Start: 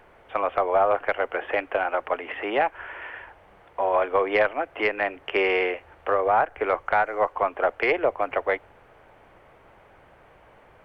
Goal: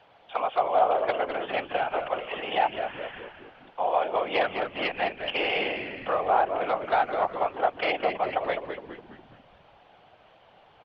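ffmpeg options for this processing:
ffmpeg -i in.wav -filter_complex "[0:a]acrossover=split=340[link_01][link_02];[link_02]aexciter=amount=6.5:drive=5.8:freq=3000[link_03];[link_01][link_03]amix=inputs=2:normalize=0,afftfilt=real='hypot(re,im)*cos(2*PI*random(0))':imag='hypot(re,im)*sin(2*PI*random(1))':win_size=512:overlap=0.75,highpass=100,equalizer=frequency=250:width_type=q:width=4:gain=-3,equalizer=frequency=370:width_type=q:width=4:gain=-6,equalizer=frequency=760:width_type=q:width=4:gain=8,lowpass=frequency=3800:width=0.5412,lowpass=frequency=3800:width=1.3066,asplit=7[link_04][link_05][link_06][link_07][link_08][link_09][link_10];[link_05]adelay=206,afreqshift=-100,volume=-7.5dB[link_11];[link_06]adelay=412,afreqshift=-200,volume=-13.9dB[link_12];[link_07]adelay=618,afreqshift=-300,volume=-20.3dB[link_13];[link_08]adelay=824,afreqshift=-400,volume=-26.6dB[link_14];[link_09]adelay=1030,afreqshift=-500,volume=-33dB[link_15];[link_10]adelay=1236,afreqshift=-600,volume=-39.4dB[link_16];[link_04][link_11][link_12][link_13][link_14][link_15][link_16]amix=inputs=7:normalize=0" out.wav

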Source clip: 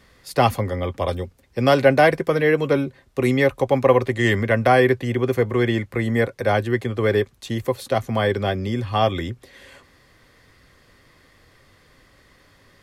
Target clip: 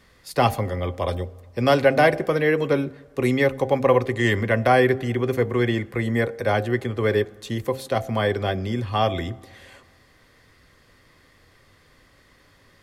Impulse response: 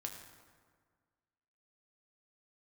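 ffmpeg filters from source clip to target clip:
-filter_complex "[0:a]bandreject=frequency=66.36:width_type=h:width=4,bandreject=frequency=132.72:width_type=h:width=4,bandreject=frequency=199.08:width_type=h:width=4,bandreject=frequency=265.44:width_type=h:width=4,bandreject=frequency=331.8:width_type=h:width=4,bandreject=frequency=398.16:width_type=h:width=4,bandreject=frequency=464.52:width_type=h:width=4,bandreject=frequency=530.88:width_type=h:width=4,bandreject=frequency=597.24:width_type=h:width=4,bandreject=frequency=663.6:width_type=h:width=4,bandreject=frequency=729.96:width_type=h:width=4,bandreject=frequency=796.32:width_type=h:width=4,asplit=2[link_01][link_02];[1:a]atrim=start_sample=2205,asetrate=37926,aresample=44100[link_03];[link_02][link_03]afir=irnorm=-1:irlink=0,volume=-15dB[link_04];[link_01][link_04]amix=inputs=2:normalize=0,volume=-2.5dB"

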